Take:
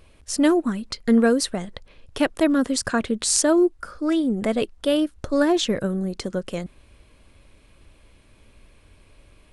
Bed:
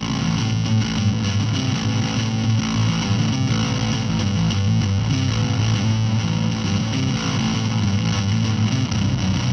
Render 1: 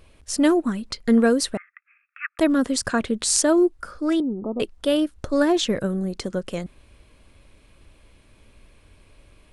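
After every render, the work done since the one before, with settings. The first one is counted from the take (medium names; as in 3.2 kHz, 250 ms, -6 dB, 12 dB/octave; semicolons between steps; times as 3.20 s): 1.57–2.39 s: Chebyshev band-pass 1.2–2.6 kHz, order 5; 4.20–4.60 s: rippled Chebyshev low-pass 1.3 kHz, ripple 9 dB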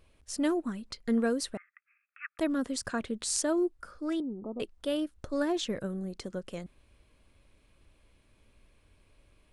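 trim -10.5 dB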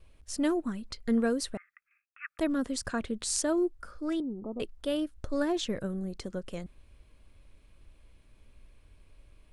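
gate with hold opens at -57 dBFS; bass shelf 72 Hz +10 dB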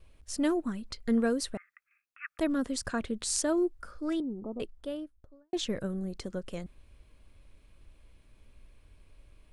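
4.32–5.53 s: studio fade out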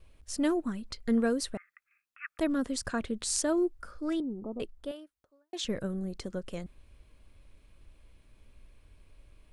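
4.91–5.65 s: high-pass 900 Hz 6 dB/octave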